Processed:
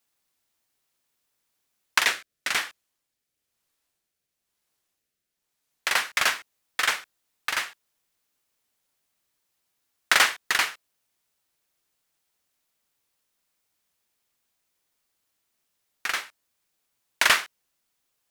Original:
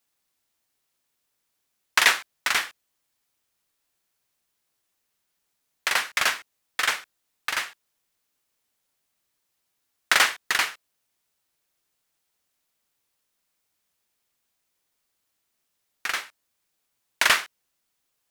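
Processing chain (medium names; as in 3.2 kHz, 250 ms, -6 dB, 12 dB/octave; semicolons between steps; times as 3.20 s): 1.98–5.91 s: rotary cabinet horn 1 Hz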